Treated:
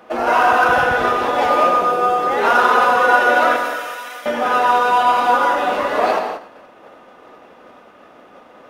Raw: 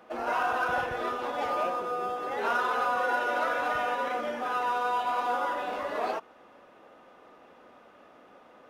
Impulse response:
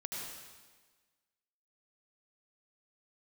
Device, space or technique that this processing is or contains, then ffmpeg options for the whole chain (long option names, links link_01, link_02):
keyed gated reverb: -filter_complex "[0:a]asettb=1/sr,asplit=3[link_01][link_02][link_03];[link_01]atrim=end=3.564[link_04];[link_02]atrim=start=3.56:end=4.26,asetpts=PTS-STARTPTS,afade=type=in:duration=0.004:curve=qsin,afade=type=out:start_time=0.696:duration=0.004:curve=qsin,aderivative[link_05];[link_03]atrim=start=4.256[link_06];[link_04][link_05]acrossfade=duration=0.004:curve1=hsin:curve2=qsin[link_07];[link_07][link_06]acrossfade=duration=0.004:curve1=qsin:curve2=hsin,asplit=3[link_08][link_09][link_10];[1:a]atrim=start_sample=2205[link_11];[link_09][link_11]afir=irnorm=-1:irlink=0[link_12];[link_10]apad=whole_len=383420[link_13];[link_12][link_13]sidechaingate=range=-33dB:threshold=-52dB:ratio=16:detection=peak,volume=1dB[link_14];[link_08][link_14]amix=inputs=2:normalize=0,volume=8.5dB"